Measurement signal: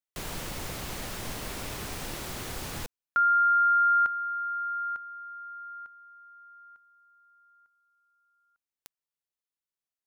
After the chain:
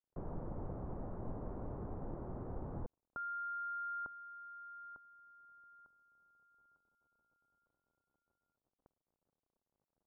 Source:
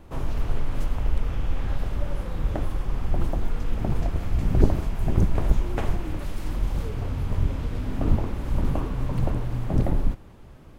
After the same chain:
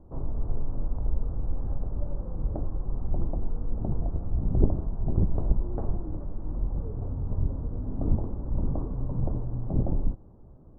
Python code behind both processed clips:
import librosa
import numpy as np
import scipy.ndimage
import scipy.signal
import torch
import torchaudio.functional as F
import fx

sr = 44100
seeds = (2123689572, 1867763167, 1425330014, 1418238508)

y = fx.dmg_crackle(x, sr, seeds[0], per_s=90.0, level_db=-52.0)
y = scipy.signal.sosfilt(scipy.signal.bessel(6, 660.0, 'lowpass', norm='mag', fs=sr, output='sos'), y)
y = F.gain(torch.from_numpy(y), -3.5).numpy()